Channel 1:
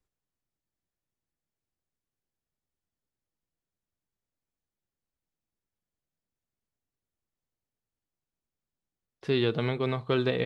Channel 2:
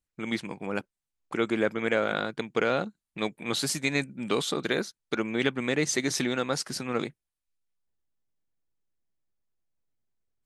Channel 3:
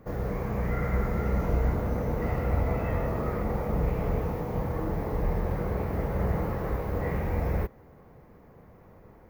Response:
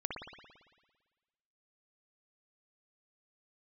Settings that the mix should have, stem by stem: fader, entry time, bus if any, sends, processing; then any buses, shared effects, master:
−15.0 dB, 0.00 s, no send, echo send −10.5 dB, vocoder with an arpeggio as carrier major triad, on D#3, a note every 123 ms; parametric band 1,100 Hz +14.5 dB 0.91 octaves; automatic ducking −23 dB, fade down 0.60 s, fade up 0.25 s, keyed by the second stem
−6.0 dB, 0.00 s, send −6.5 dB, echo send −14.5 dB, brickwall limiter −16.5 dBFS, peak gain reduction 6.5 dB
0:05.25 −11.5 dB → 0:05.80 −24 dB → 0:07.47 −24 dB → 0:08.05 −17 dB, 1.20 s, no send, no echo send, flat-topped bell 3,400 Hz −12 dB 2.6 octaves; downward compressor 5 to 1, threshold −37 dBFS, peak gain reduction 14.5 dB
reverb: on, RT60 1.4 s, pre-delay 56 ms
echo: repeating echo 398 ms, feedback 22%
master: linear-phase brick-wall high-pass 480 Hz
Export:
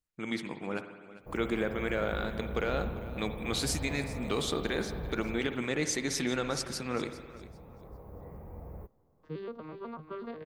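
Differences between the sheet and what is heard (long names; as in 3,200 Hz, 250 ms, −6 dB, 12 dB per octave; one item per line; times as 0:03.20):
stem 3: missing downward compressor 5 to 1, threshold −37 dBFS, peak gain reduction 14.5 dB
master: missing linear-phase brick-wall high-pass 480 Hz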